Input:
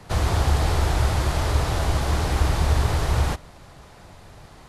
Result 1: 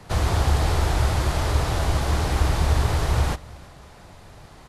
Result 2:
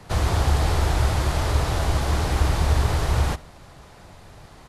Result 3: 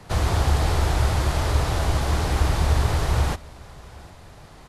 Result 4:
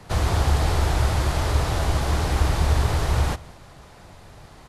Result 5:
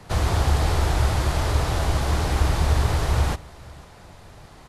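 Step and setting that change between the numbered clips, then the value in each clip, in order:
feedback delay, time: 326 ms, 72 ms, 755 ms, 195 ms, 492 ms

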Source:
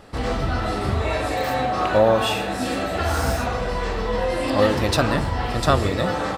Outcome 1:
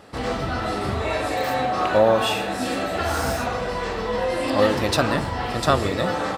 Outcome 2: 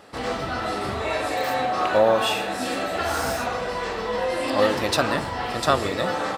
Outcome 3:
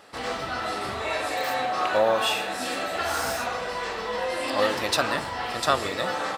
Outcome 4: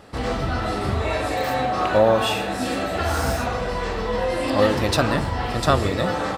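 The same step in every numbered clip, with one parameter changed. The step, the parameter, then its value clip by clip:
high-pass, cutoff frequency: 130 Hz, 340 Hz, 850 Hz, 49 Hz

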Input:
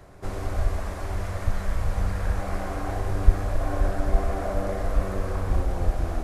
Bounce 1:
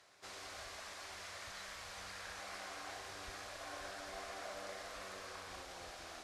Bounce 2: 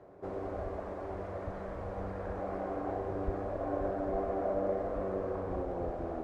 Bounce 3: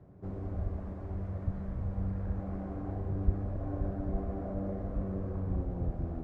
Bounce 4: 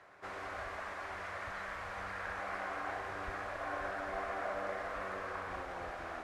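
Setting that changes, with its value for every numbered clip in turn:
band-pass filter, frequency: 4.4 kHz, 450 Hz, 170 Hz, 1.7 kHz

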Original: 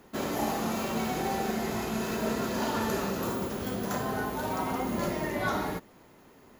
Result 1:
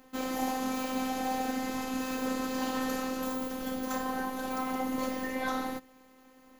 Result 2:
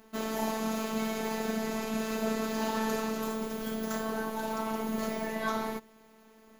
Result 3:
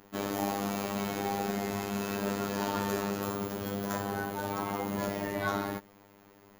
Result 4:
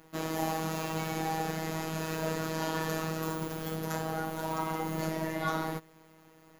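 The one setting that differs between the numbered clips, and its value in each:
robot voice, frequency: 260 Hz, 220 Hz, 100 Hz, 160 Hz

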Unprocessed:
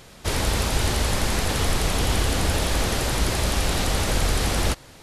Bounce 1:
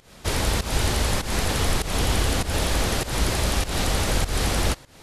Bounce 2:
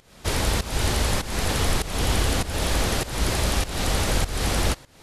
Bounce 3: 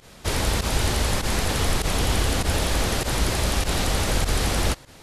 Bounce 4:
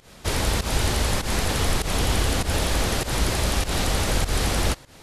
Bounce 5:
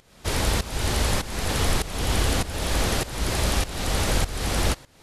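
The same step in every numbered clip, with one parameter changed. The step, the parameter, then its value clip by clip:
volume shaper, release: 189 ms, 323 ms, 66 ms, 127 ms, 508 ms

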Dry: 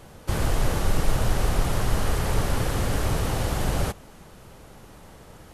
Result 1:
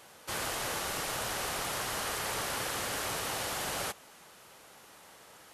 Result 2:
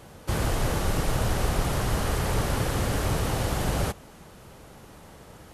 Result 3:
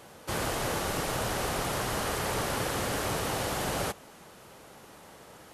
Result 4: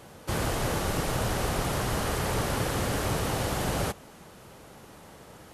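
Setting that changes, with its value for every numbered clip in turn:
high-pass, cutoff frequency: 1.3 kHz, 44 Hz, 360 Hz, 140 Hz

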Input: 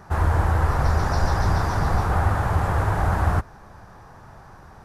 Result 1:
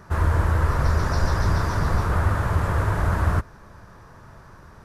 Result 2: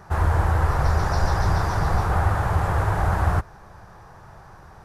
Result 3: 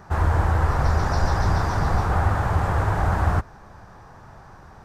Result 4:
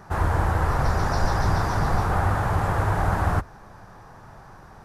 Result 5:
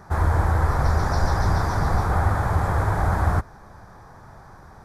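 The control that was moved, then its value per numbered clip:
peaking EQ, frequency: 780 Hz, 250 Hz, 11 kHz, 72 Hz, 2.8 kHz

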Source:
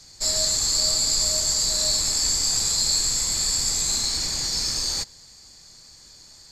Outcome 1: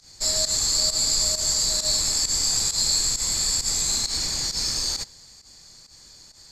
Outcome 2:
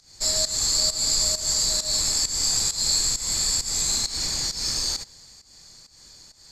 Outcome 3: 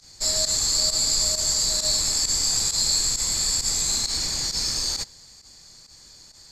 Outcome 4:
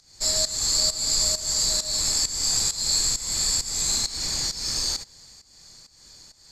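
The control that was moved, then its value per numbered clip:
volume shaper, release: 95 ms, 220 ms, 65 ms, 335 ms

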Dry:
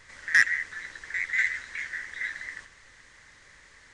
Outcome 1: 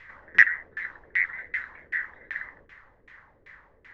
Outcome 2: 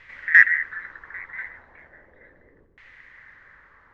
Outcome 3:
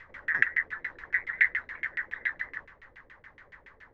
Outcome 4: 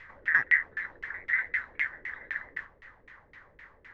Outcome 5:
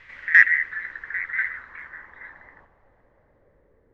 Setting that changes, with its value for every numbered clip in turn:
LFO low-pass, rate: 2.6 Hz, 0.36 Hz, 7.1 Hz, 3.9 Hz, 0.23 Hz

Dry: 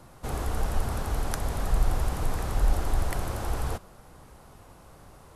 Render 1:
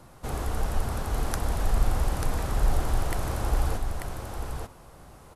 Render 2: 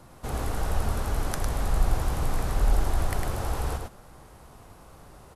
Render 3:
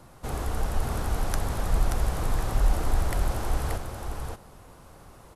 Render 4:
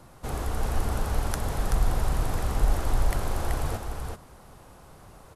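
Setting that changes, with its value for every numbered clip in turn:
delay, time: 890 ms, 104 ms, 581 ms, 381 ms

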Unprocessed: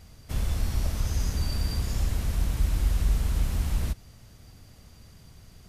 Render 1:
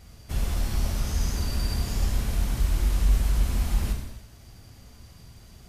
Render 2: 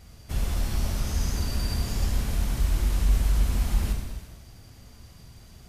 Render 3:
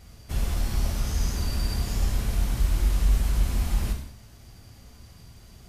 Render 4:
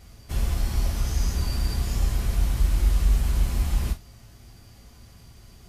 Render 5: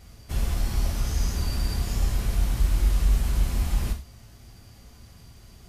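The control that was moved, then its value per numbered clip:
gated-style reverb, gate: 350 ms, 520 ms, 240 ms, 80 ms, 130 ms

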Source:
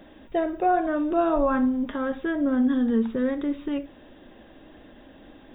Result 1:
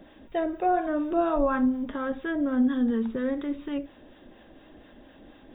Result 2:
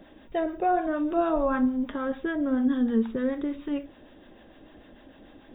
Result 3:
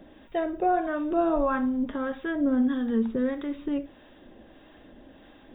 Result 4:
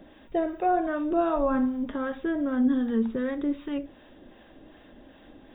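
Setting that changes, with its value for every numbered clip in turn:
harmonic tremolo, rate: 4.2 Hz, 6.7 Hz, 1.6 Hz, 2.6 Hz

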